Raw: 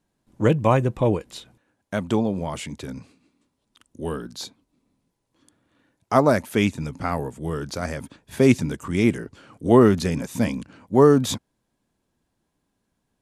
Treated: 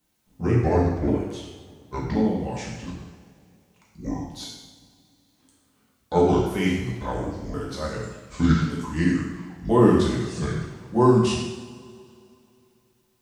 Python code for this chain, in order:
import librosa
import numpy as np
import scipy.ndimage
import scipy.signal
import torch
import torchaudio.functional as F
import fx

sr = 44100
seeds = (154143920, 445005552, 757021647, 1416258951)

y = fx.pitch_ramps(x, sr, semitones=-9.5, every_ms=1077)
y = fx.quant_dither(y, sr, seeds[0], bits=12, dither='triangular')
y = fx.rev_double_slope(y, sr, seeds[1], early_s=0.91, late_s=2.9, knee_db=-18, drr_db=-4.5)
y = F.gain(torch.from_numpy(y), -6.0).numpy()